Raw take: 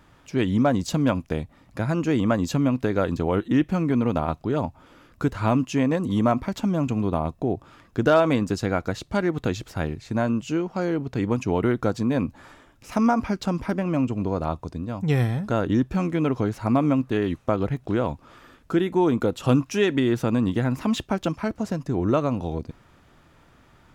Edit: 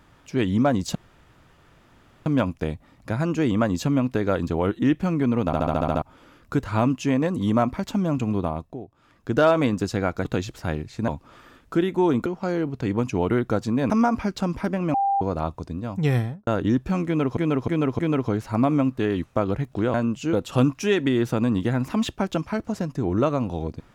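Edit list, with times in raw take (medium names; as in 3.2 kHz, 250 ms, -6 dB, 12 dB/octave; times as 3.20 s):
0.95 s: insert room tone 1.31 s
4.15 s: stutter in place 0.07 s, 8 plays
7.06–8.11 s: dip -16.5 dB, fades 0.49 s
8.94–9.37 s: delete
10.20–10.59 s: swap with 18.06–19.24 s
12.23–12.95 s: delete
13.99–14.26 s: bleep 793 Hz -18.5 dBFS
15.20–15.52 s: studio fade out
16.11–16.42 s: loop, 4 plays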